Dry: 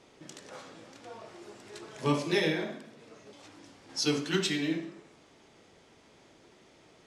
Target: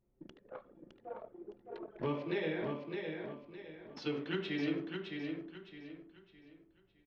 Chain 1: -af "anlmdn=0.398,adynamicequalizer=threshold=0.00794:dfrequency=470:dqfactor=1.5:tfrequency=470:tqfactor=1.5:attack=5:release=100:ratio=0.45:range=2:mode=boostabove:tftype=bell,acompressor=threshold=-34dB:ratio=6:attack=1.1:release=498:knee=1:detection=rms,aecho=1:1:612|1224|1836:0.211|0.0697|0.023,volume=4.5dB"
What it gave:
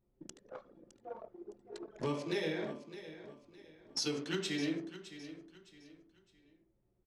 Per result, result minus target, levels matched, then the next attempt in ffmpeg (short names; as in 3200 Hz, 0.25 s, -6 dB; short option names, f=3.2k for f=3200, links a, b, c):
echo-to-direct -8.5 dB; 4000 Hz band +5.0 dB
-af "anlmdn=0.398,adynamicequalizer=threshold=0.00794:dfrequency=470:dqfactor=1.5:tfrequency=470:tqfactor=1.5:attack=5:release=100:ratio=0.45:range=2:mode=boostabove:tftype=bell,acompressor=threshold=-34dB:ratio=6:attack=1.1:release=498:knee=1:detection=rms,aecho=1:1:612|1224|1836|2448:0.562|0.186|0.0612|0.0202,volume=4.5dB"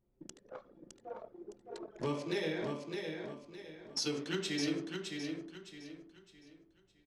4000 Hz band +5.5 dB
-af "anlmdn=0.398,adynamicequalizer=threshold=0.00794:dfrequency=470:dqfactor=1.5:tfrequency=470:tqfactor=1.5:attack=5:release=100:ratio=0.45:range=2:mode=boostabove:tftype=bell,acompressor=threshold=-34dB:ratio=6:attack=1.1:release=498:knee=1:detection=rms,lowpass=f=3.2k:w=0.5412,lowpass=f=3.2k:w=1.3066,aecho=1:1:612|1224|1836|2448:0.562|0.186|0.0612|0.0202,volume=4.5dB"